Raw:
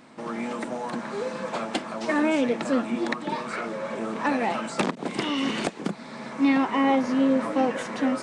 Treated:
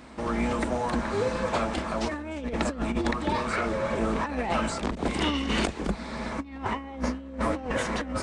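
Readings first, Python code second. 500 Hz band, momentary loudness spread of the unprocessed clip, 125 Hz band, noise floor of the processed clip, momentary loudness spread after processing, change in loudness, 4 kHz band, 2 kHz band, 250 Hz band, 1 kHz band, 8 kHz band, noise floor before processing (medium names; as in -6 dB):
-1.5 dB, 10 LU, +6.5 dB, -41 dBFS, 6 LU, -2.5 dB, 0.0 dB, -1.5 dB, -5.0 dB, -1.5 dB, +1.5 dB, -40 dBFS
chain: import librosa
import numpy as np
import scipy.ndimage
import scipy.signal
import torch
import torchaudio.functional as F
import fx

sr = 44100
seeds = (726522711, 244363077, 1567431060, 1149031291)

y = fx.octave_divider(x, sr, octaves=2, level_db=-3.0)
y = fx.over_compress(y, sr, threshold_db=-27.0, ratio=-0.5)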